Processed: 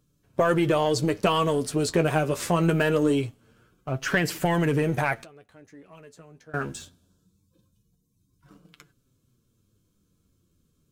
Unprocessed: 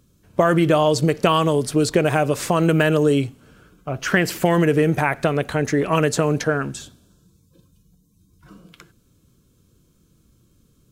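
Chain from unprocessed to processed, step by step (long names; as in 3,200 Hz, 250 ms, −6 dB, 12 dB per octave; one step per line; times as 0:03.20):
leveller curve on the samples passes 1
0:05.20–0:06.54: gate with flip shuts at −20 dBFS, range −25 dB
flanger 0.23 Hz, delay 6.5 ms, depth 6.2 ms, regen +39%
level −4 dB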